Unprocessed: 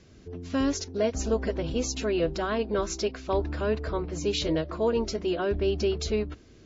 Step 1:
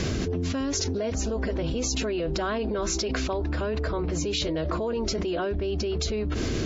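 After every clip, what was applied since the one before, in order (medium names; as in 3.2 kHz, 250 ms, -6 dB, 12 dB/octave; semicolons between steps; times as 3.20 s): level flattener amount 100%; trim -6 dB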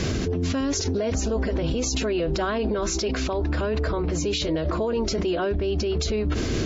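peak limiter -22 dBFS, peak gain reduction 7.5 dB; trim +5 dB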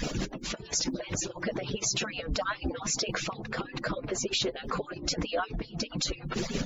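harmonic-percussive separation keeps percussive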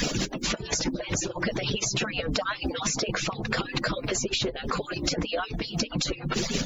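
three bands compressed up and down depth 100%; trim +2.5 dB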